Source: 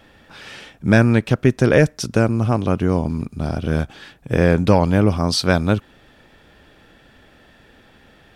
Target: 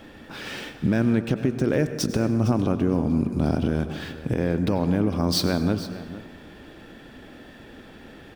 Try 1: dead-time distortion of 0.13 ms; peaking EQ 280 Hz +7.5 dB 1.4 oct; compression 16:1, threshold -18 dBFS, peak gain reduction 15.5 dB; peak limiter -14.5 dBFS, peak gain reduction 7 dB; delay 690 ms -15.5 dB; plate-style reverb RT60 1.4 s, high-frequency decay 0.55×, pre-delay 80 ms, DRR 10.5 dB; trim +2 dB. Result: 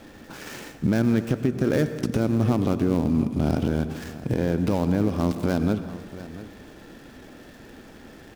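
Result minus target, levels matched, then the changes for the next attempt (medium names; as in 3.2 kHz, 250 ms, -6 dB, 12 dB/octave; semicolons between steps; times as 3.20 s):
echo 234 ms late; dead-time distortion: distortion +14 dB
change: dead-time distortion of 0.026 ms; change: delay 456 ms -15.5 dB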